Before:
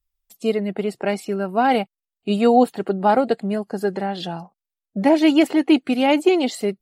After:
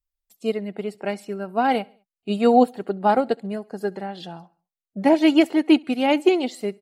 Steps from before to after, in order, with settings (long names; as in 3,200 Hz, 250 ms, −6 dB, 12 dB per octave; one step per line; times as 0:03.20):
on a send: repeating echo 68 ms, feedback 50%, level −23 dB
on the sum: expander for the loud parts 1.5 to 1, over −26 dBFS